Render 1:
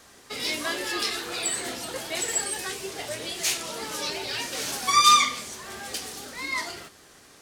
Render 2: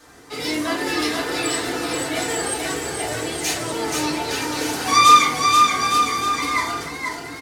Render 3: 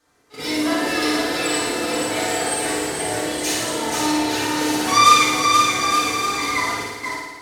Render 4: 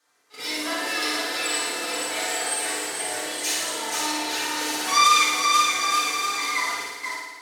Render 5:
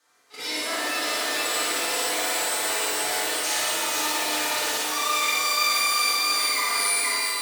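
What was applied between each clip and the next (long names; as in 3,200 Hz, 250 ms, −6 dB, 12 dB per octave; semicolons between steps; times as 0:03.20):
on a send: bouncing-ball delay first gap 480 ms, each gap 0.8×, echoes 5; on the sum: feedback delay network reverb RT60 0.45 s, low-frequency decay 1.35×, high-frequency decay 0.3×, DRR −7 dB; level −2 dB
noise gate −29 dBFS, range −15 dB; on a send: flutter between parallel walls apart 9.6 metres, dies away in 1.2 s; on the sum: level −1.5 dB
high-pass filter 1,100 Hz 6 dB per octave; boost into a limiter +4.5 dB; level −6 dB
reversed playback; downward compressor, threshold −28 dBFS, peak gain reduction 14 dB; reversed playback; reverb with rising layers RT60 3.6 s, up +12 semitones, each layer −2 dB, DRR 1.5 dB; level +2 dB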